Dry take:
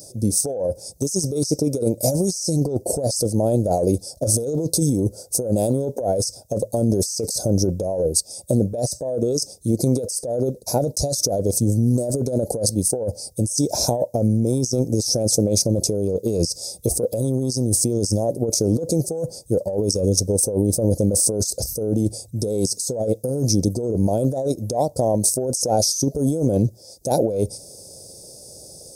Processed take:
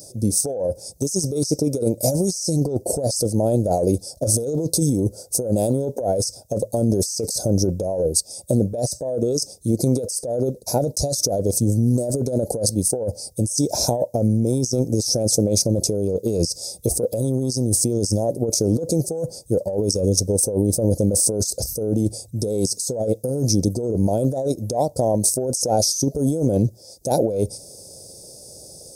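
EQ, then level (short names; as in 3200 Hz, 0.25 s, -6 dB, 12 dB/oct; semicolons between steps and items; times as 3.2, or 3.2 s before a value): notch 1100 Hz, Q 28; 0.0 dB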